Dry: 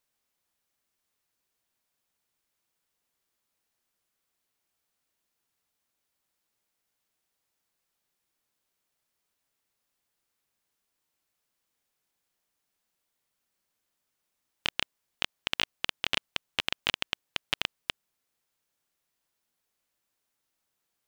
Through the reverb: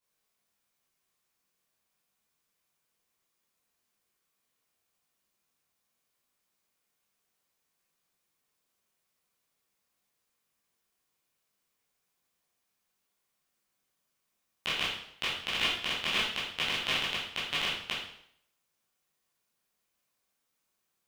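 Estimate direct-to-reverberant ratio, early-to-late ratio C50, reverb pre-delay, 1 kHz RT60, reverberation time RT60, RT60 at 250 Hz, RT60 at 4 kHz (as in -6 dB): -9.5 dB, 2.0 dB, 10 ms, 0.65 s, 0.65 s, 0.65 s, 0.60 s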